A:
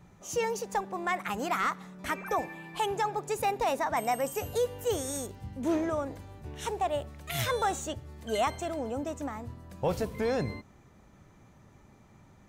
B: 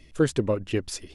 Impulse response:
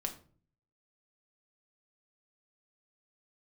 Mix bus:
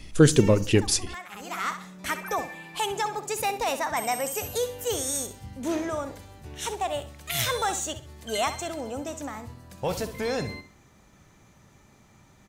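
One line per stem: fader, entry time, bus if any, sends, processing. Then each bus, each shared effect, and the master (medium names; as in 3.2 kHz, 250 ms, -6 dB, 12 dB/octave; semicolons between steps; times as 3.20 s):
-0.5 dB, 0.00 s, no send, echo send -12 dB, treble shelf 9.1 kHz -3.5 dB; auto duck -21 dB, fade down 0.85 s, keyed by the second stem
-1.5 dB, 0.00 s, send -8 dB, no echo send, bass shelf 330 Hz +8 dB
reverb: on, RT60 0.45 s, pre-delay 5 ms
echo: feedback delay 65 ms, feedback 27%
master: treble shelf 2.3 kHz +11 dB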